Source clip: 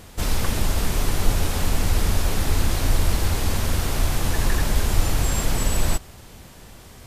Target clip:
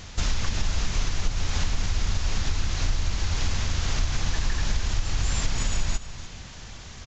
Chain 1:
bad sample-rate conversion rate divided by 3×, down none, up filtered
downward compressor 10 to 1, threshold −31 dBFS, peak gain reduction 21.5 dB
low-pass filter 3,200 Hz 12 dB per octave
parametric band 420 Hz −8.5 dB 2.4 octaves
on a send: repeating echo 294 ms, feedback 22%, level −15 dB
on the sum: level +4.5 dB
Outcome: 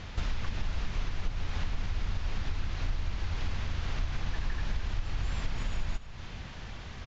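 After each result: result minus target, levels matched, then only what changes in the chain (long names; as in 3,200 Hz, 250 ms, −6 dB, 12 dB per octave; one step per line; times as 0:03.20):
downward compressor: peak gain reduction +7 dB; 4,000 Hz band −3.5 dB
change: downward compressor 10 to 1, threshold −23.5 dBFS, peak gain reduction 14.5 dB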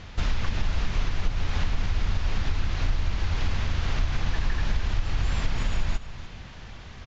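4,000 Hz band −4.0 dB
remove: low-pass filter 3,200 Hz 12 dB per octave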